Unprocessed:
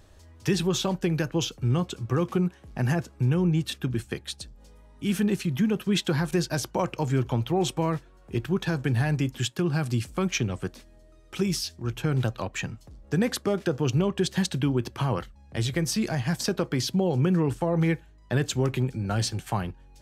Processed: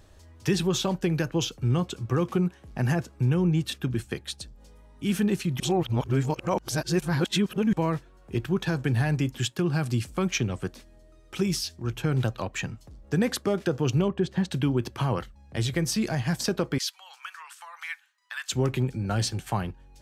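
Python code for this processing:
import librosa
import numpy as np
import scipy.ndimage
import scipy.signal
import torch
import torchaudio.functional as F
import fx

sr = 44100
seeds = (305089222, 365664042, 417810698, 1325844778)

y = fx.lowpass(x, sr, hz=1200.0, slope=6, at=(14.08, 14.51))
y = fx.steep_highpass(y, sr, hz=1100.0, slope=36, at=(16.78, 18.52))
y = fx.edit(y, sr, fx.reverse_span(start_s=5.6, length_s=2.13), tone=tone)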